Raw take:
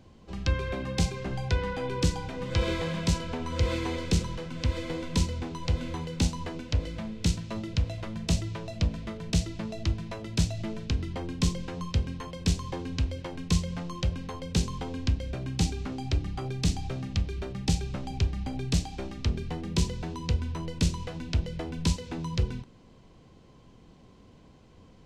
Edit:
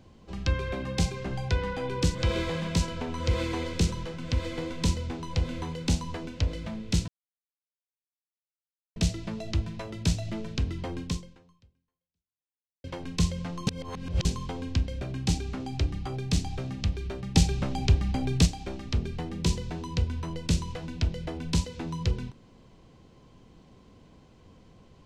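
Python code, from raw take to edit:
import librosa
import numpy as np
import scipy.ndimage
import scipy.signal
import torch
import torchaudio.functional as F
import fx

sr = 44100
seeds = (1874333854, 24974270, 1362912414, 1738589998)

y = fx.edit(x, sr, fx.cut(start_s=2.15, length_s=0.32),
    fx.silence(start_s=7.4, length_s=1.88),
    fx.fade_out_span(start_s=11.34, length_s=1.82, curve='exp'),
    fx.reverse_span(start_s=13.99, length_s=0.58),
    fx.clip_gain(start_s=17.67, length_s=1.11, db=5.0), tone=tone)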